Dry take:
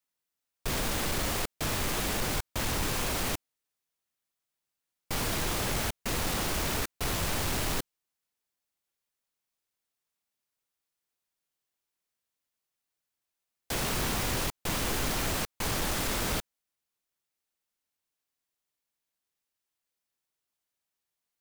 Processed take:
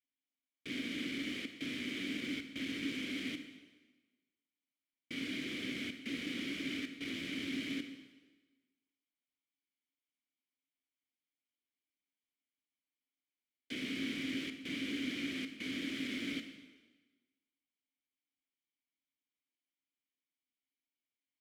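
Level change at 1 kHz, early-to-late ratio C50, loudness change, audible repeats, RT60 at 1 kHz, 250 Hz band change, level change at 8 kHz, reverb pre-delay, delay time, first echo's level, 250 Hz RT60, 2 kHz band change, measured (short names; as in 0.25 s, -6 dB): -25.0 dB, 8.5 dB, -9.0 dB, none, 1.3 s, -1.0 dB, -21.0 dB, 27 ms, none, none, 1.2 s, -6.0 dB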